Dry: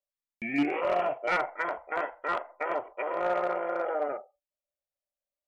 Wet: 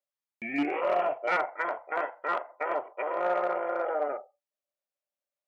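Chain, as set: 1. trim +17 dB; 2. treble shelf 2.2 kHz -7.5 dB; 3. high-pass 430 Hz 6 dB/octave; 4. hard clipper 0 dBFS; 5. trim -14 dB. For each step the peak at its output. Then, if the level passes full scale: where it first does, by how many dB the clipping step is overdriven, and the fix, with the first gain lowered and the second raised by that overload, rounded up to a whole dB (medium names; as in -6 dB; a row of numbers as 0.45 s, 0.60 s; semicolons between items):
-3.5 dBFS, -3.5 dBFS, -3.5 dBFS, -3.5 dBFS, -17.5 dBFS; nothing clips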